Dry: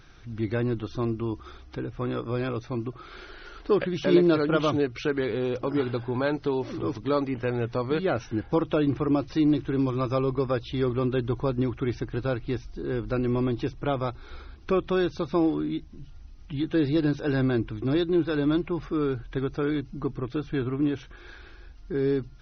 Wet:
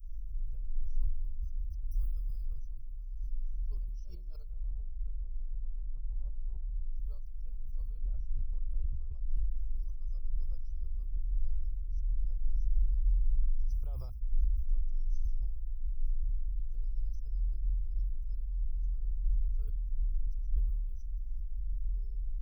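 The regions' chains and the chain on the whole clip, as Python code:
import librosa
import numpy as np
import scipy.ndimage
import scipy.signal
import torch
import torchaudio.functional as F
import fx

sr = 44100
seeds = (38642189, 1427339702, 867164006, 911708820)

y = fx.chain(x, sr, fx.high_shelf(hz=2400.0, db=11.5),
    fx.band_squash(depth_pct=70), at=(1.91, 2.45))
y = fx.chain(y, sr, fx.gaussian_blur(sigma=12.0),
    fx.low_shelf(hz=210.0, db=-7.0),
    fx.spectral_comp(ratio=2.0), at=(4.53, 6.96))
y = fx.chain(y, sr, fx.lowpass(hz=3400.0, slope=24),
    fx.band_squash(depth_pct=100), at=(7.98, 9.51))
y = fx.chain(y, sr, fx.highpass(hz=110.0, slope=12),
    fx.high_shelf(hz=4200.0, db=-5.5), at=(13.67, 14.21))
y = fx.chain(y, sr, fx.over_compress(threshold_db=-30.0, ratio=-0.5),
    fx.doubler(ms=46.0, db=-14.0), at=(15.1, 15.77))
y = scipy.signal.sosfilt(scipy.signal.cheby2(4, 60, [130.0, 4000.0], 'bandstop', fs=sr, output='sos'), y)
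y = fx.low_shelf(y, sr, hz=330.0, db=6.5)
y = fx.sustainer(y, sr, db_per_s=26.0)
y = y * librosa.db_to_amplitude(9.5)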